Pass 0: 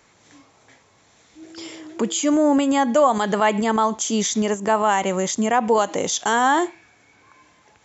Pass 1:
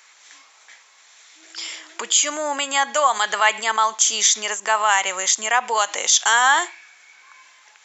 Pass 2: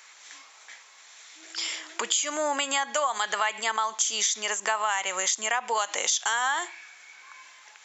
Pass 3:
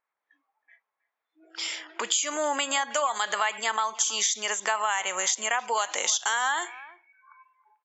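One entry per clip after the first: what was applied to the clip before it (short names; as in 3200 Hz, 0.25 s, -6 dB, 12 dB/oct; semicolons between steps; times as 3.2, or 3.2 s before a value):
HPF 1400 Hz 12 dB/oct; gain +8.5 dB
compressor 6:1, threshold -23 dBFS, peak gain reduction 11.5 dB
spectral noise reduction 24 dB; speakerphone echo 0.32 s, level -19 dB; low-pass opened by the level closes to 980 Hz, open at -25.5 dBFS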